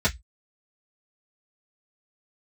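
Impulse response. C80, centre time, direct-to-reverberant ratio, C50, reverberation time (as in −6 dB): 35.5 dB, 9 ms, −9.0 dB, 22.0 dB, 0.10 s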